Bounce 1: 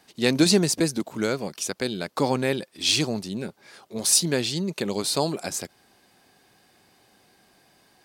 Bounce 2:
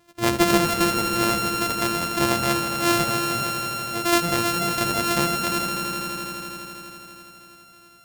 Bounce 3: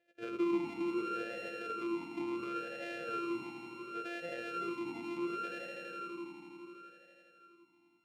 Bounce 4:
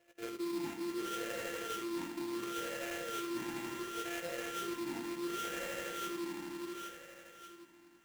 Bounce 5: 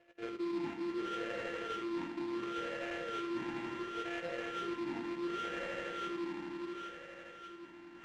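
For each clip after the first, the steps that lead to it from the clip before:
samples sorted by size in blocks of 128 samples; echo that builds up and dies away 82 ms, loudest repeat 5, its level −11 dB
brickwall limiter −13.5 dBFS, peak gain reduction 7.5 dB; formant filter swept between two vowels e-u 0.7 Hz; level −3 dB
reversed playback; downward compressor 6 to 1, threshold −45 dBFS, peak gain reduction 15 dB; reversed playback; sample-rate reduction 4,600 Hz, jitter 20%; level +8 dB
low-pass filter 3,200 Hz 12 dB per octave; reversed playback; upward compression, threshold −45 dBFS; reversed playback; level +1 dB

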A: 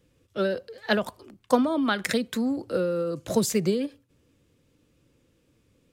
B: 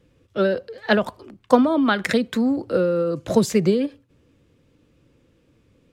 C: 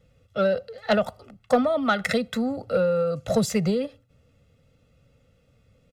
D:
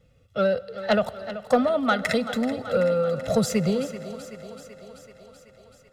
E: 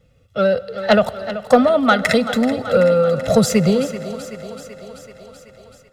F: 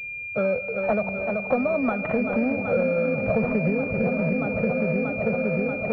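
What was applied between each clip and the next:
high-shelf EQ 5,600 Hz −12 dB; level +6 dB
comb filter 1.5 ms, depth 85%; soft clipping −7 dBFS, distortion −19 dB; level −3.5 dB
feedback echo with a high-pass in the loop 382 ms, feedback 69%, high-pass 190 Hz, level −13 dB; convolution reverb RT60 4.0 s, pre-delay 93 ms, DRR 19.5 dB
automatic gain control gain up to 4.5 dB; level +3.5 dB
echo whose low-pass opens from repeat to repeat 633 ms, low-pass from 200 Hz, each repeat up 1 octave, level −3 dB; downward compressor 6 to 1, threshold −20 dBFS, peak gain reduction 13 dB; switching amplifier with a slow clock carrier 2,400 Hz

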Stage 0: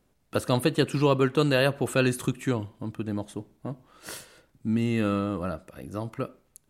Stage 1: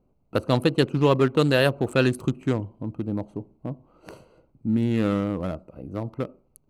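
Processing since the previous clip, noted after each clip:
adaptive Wiener filter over 25 samples
level +3 dB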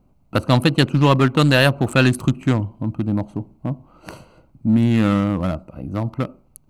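parametric band 440 Hz −9.5 dB 0.77 octaves
in parallel at −7 dB: soft clipping −25.5 dBFS, distortion −8 dB
on the sum: level +6.5 dB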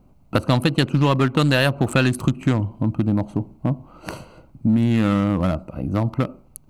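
downward compressor 3 to 1, threshold −21 dBFS, peak gain reduction 9 dB
level +4.5 dB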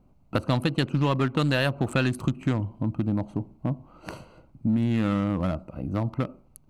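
high-shelf EQ 8,100 Hz −6.5 dB
level −6 dB

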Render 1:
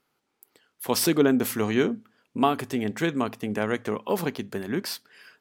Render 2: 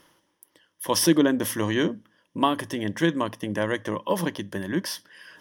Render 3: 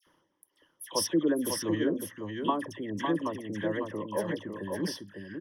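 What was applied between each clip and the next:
EQ curve with evenly spaced ripples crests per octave 1.2, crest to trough 11 dB; reversed playback; upward compression, threshold −43 dBFS; reversed playback
spectral envelope exaggerated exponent 1.5; all-pass dispersion lows, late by 69 ms, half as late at 1,700 Hz; on a send: single-tap delay 553 ms −5 dB; on the sum: level −7 dB

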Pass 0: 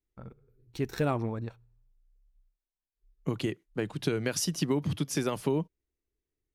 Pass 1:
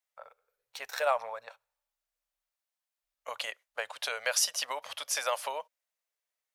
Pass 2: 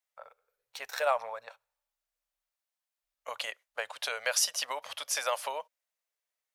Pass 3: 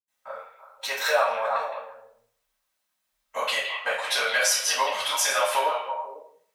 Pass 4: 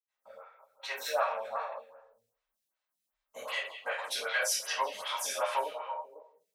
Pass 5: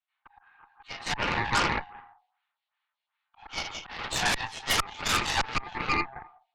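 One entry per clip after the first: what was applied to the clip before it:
elliptic high-pass filter 560 Hz, stop band 40 dB; level +5.5 dB
no processing that can be heard
echo through a band-pass that steps 165 ms, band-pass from 2,600 Hz, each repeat −1.4 octaves, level −6 dB; downward compressor 3 to 1, threshold −33 dBFS, peak gain reduction 8.5 dB; convolution reverb RT60 0.55 s, pre-delay 76 ms; level +5.5 dB
phaser with staggered stages 2.6 Hz; level −6 dB
volume swells 371 ms; single-sideband voice off tune +270 Hz 390–3,500 Hz; harmonic generator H 8 −9 dB, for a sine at −23 dBFS; level +8 dB

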